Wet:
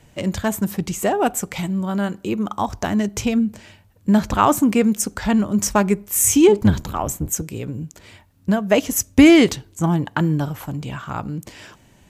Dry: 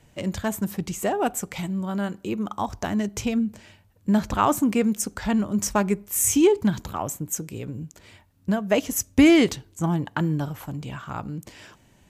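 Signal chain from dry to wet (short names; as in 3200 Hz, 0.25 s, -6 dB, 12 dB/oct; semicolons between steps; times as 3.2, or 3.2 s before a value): 6.48–7.42 octaver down 1 oct, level -2 dB; gain +5 dB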